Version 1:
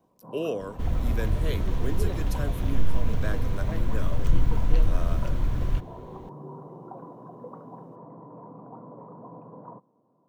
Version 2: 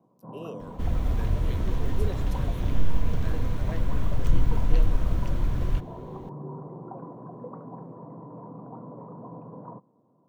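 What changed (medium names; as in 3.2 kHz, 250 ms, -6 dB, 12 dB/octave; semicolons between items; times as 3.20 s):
speech -10.5 dB; first sound: add bass shelf 250 Hz +6.5 dB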